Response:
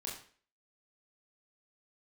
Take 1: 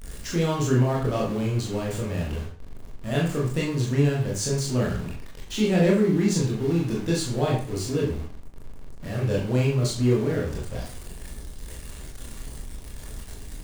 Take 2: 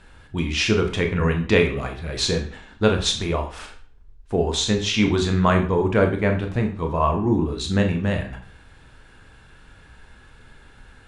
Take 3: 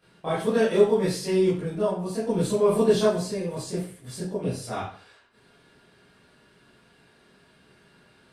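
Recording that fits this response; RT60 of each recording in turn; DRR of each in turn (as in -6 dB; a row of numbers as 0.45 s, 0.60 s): 1; 0.45 s, 0.45 s, 0.45 s; -4.0 dB, 3.5 dB, -12.0 dB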